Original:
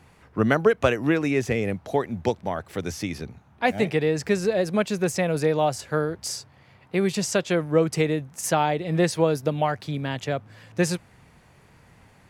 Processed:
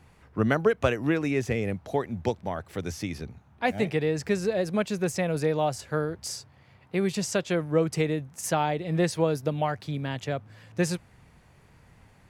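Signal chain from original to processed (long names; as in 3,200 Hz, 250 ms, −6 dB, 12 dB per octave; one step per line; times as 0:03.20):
low-shelf EQ 87 Hz +7.5 dB
level −4 dB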